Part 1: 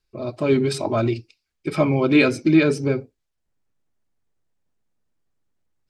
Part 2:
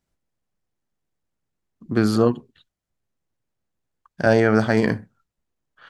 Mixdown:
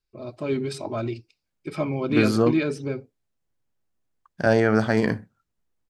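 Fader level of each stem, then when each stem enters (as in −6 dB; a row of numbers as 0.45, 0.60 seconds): −7.5, −2.5 decibels; 0.00, 0.20 seconds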